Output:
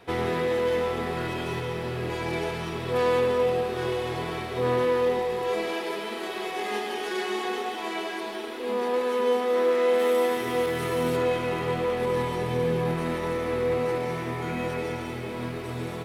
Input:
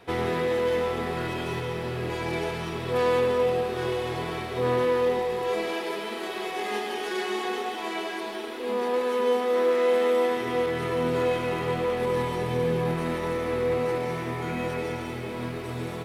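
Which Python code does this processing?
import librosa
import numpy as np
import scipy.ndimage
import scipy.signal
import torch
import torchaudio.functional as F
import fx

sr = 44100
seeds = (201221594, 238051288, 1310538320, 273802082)

y = fx.high_shelf(x, sr, hz=fx.line((9.98, 9400.0), (11.15, 5900.0)), db=12.0, at=(9.98, 11.15), fade=0.02)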